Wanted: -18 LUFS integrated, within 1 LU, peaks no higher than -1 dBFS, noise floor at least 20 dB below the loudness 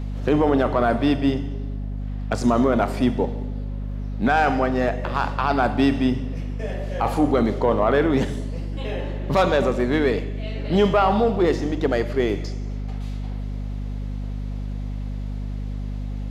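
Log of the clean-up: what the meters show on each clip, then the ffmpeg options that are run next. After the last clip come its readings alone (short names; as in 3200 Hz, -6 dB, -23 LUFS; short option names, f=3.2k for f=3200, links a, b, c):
hum 50 Hz; harmonics up to 250 Hz; hum level -26 dBFS; loudness -23.0 LUFS; peak -7.5 dBFS; loudness target -18.0 LUFS
-> -af "bandreject=f=50:t=h:w=4,bandreject=f=100:t=h:w=4,bandreject=f=150:t=h:w=4,bandreject=f=200:t=h:w=4,bandreject=f=250:t=h:w=4"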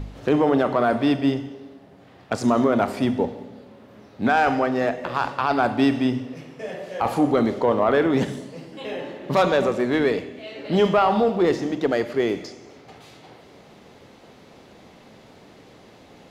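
hum none; loudness -22.0 LUFS; peak -7.5 dBFS; loudness target -18.0 LUFS
-> -af "volume=4dB"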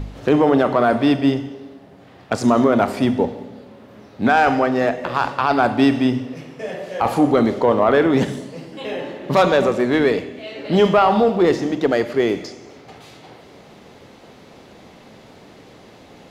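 loudness -18.0 LUFS; peak -3.5 dBFS; noise floor -45 dBFS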